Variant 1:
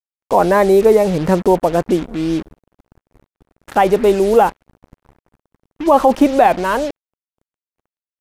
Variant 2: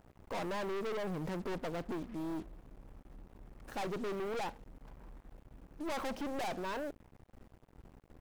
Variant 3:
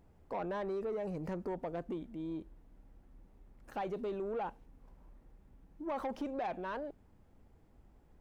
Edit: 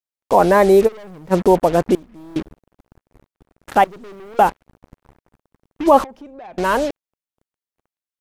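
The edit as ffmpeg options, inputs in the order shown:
-filter_complex "[1:a]asplit=3[a][b][c];[0:a]asplit=5[d][e][f][g][h];[d]atrim=end=0.89[i];[a]atrim=start=0.85:end=1.34[j];[e]atrim=start=1.3:end=1.952[k];[b]atrim=start=1.948:end=2.362[l];[f]atrim=start=2.358:end=3.842[m];[c]atrim=start=3.838:end=4.392[n];[g]atrim=start=4.388:end=6.042[o];[2:a]atrim=start=6.038:end=6.582[p];[h]atrim=start=6.578[q];[i][j]acrossfade=d=0.04:c1=tri:c2=tri[r];[r][k]acrossfade=d=0.04:c1=tri:c2=tri[s];[s][l]acrossfade=d=0.004:c1=hsin:c2=hsin[t];[t][m]acrossfade=d=0.004:c1=hsin:c2=hsin[u];[u][n]acrossfade=d=0.004:c1=hsin:c2=hsin[v];[v][o]acrossfade=d=0.004:c1=hsin:c2=hsin[w];[w][p]acrossfade=d=0.004:c1=hsin:c2=hsin[x];[x][q]acrossfade=d=0.004:c1=hsin:c2=hsin"

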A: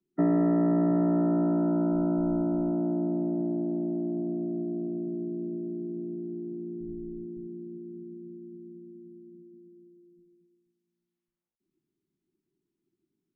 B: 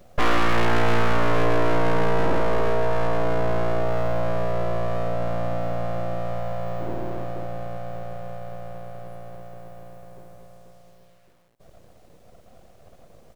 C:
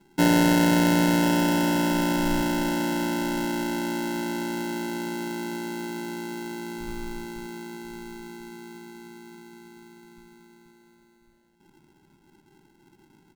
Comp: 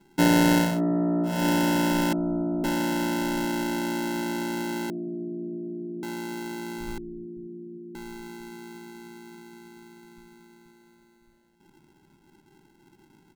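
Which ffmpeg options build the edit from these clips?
-filter_complex "[0:a]asplit=4[a][b][c][d];[2:a]asplit=5[e][f][g][h][i];[e]atrim=end=0.81[j];[a]atrim=start=0.57:end=1.47[k];[f]atrim=start=1.23:end=2.132[l];[b]atrim=start=2.128:end=2.642[m];[g]atrim=start=2.638:end=4.902[n];[c]atrim=start=4.898:end=6.032[o];[h]atrim=start=6.028:end=6.982[p];[d]atrim=start=6.978:end=7.952[q];[i]atrim=start=7.948[r];[j][k]acrossfade=d=0.24:c1=tri:c2=tri[s];[s][l]acrossfade=d=0.24:c1=tri:c2=tri[t];[t][m]acrossfade=d=0.004:c1=hsin:c2=hsin[u];[u][n]acrossfade=d=0.004:c1=hsin:c2=hsin[v];[v][o]acrossfade=d=0.004:c1=hsin:c2=hsin[w];[w][p]acrossfade=d=0.004:c1=hsin:c2=hsin[x];[x][q]acrossfade=d=0.004:c1=hsin:c2=hsin[y];[y][r]acrossfade=d=0.004:c1=hsin:c2=hsin"

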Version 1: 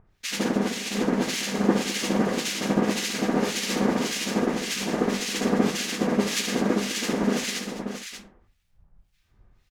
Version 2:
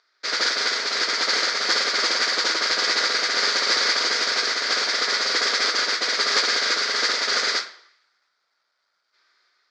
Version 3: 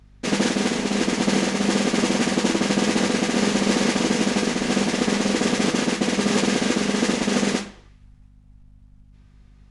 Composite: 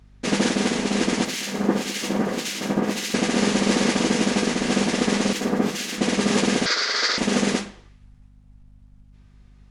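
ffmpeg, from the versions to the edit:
-filter_complex "[0:a]asplit=2[a][b];[2:a]asplit=4[c][d][e][f];[c]atrim=end=1.252[g];[a]atrim=start=1.248:end=3.142[h];[d]atrim=start=3.138:end=5.332[i];[b]atrim=start=5.328:end=5.982[j];[e]atrim=start=5.978:end=6.662[k];[1:a]atrim=start=6.658:end=7.182[l];[f]atrim=start=7.178[m];[g][h]acrossfade=d=0.004:c1=hsin:c2=hsin[n];[n][i]acrossfade=d=0.004:c1=hsin:c2=hsin[o];[o][j]acrossfade=d=0.004:c1=hsin:c2=hsin[p];[p][k]acrossfade=d=0.004:c1=hsin:c2=hsin[q];[q][l]acrossfade=d=0.004:c1=hsin:c2=hsin[r];[r][m]acrossfade=d=0.004:c1=hsin:c2=hsin"

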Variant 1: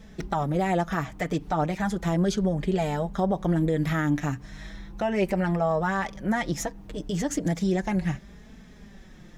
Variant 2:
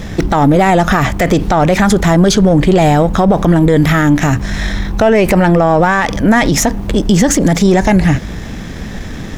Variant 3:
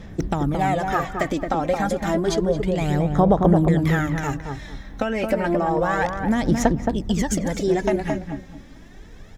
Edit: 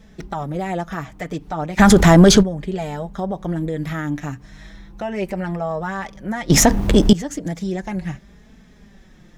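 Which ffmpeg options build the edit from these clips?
-filter_complex "[1:a]asplit=2[a][b];[0:a]asplit=3[c][d][e];[c]atrim=end=1.81[f];[a]atrim=start=1.77:end=2.44[g];[d]atrim=start=2.4:end=6.502[h];[b]atrim=start=6.498:end=7.132[i];[e]atrim=start=7.128[j];[f][g]acrossfade=d=0.04:c1=tri:c2=tri[k];[k][h]acrossfade=d=0.04:c1=tri:c2=tri[l];[l][i]acrossfade=d=0.004:c1=hsin:c2=hsin[m];[m][j]acrossfade=d=0.004:c1=hsin:c2=hsin"

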